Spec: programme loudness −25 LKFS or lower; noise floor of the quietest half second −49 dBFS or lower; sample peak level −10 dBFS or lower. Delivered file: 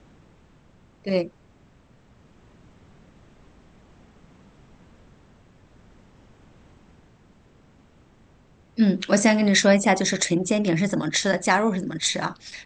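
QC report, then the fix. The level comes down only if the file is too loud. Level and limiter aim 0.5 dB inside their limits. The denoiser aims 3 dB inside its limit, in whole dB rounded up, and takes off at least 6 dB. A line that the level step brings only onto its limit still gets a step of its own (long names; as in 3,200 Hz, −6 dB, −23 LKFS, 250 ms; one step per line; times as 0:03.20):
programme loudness −21.5 LKFS: out of spec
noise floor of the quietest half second −55 dBFS: in spec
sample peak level −4.0 dBFS: out of spec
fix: level −4 dB
brickwall limiter −10.5 dBFS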